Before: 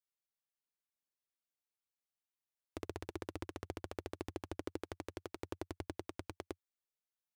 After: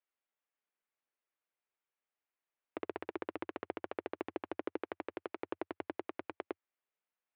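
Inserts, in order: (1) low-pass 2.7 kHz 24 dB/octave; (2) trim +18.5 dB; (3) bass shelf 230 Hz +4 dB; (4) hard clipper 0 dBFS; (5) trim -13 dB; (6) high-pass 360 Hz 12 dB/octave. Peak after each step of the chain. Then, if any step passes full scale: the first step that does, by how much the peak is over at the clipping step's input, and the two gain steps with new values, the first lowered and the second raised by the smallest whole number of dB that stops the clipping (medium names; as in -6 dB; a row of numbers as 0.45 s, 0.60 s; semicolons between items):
-24.0 dBFS, -5.5 dBFS, -4.5 dBFS, -4.5 dBFS, -17.5 dBFS, -21.5 dBFS; nothing clips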